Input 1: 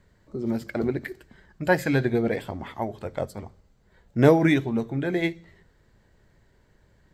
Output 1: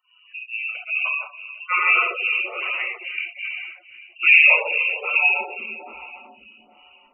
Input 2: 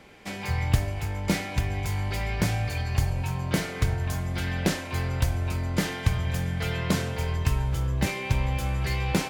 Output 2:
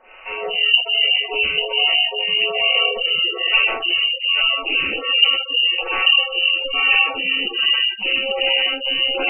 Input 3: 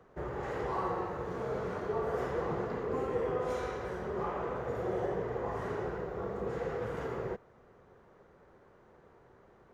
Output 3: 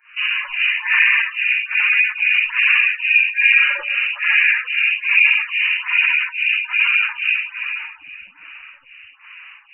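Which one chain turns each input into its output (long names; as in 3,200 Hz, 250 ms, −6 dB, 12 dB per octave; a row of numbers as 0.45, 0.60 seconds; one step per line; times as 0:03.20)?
voice inversion scrambler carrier 2,900 Hz
rectangular room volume 210 cubic metres, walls hard, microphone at 1 metre
dynamic equaliser 430 Hz, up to +7 dB, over −47 dBFS, Q 1.8
gate on every frequency bin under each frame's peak −20 dB strong
phaser with staggered stages 1.2 Hz
normalise the peak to −1.5 dBFS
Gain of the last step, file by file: 0.0, +5.5, +15.0 decibels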